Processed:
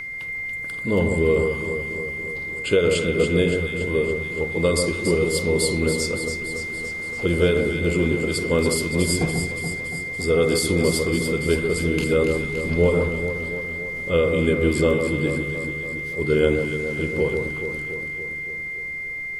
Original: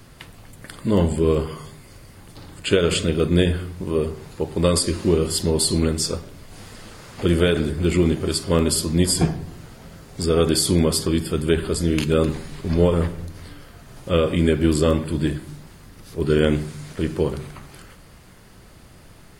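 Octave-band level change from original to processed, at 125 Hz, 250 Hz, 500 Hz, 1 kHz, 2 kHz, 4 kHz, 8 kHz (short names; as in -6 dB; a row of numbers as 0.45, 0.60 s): -3.0, -2.5, +1.5, -3.0, +11.0, -3.5, -3.5 dB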